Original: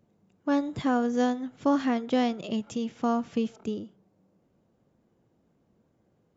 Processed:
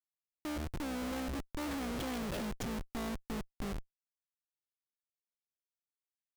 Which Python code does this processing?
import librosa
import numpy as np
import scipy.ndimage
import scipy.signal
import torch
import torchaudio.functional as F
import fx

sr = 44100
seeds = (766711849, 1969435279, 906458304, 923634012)

y = fx.octave_divider(x, sr, octaves=2, level_db=-6.0)
y = fx.doppler_pass(y, sr, speed_mps=18, closest_m=6.2, pass_at_s=2.22)
y = fx.schmitt(y, sr, flips_db=-44.0)
y = y * 10.0 ** (-2.0 / 20.0)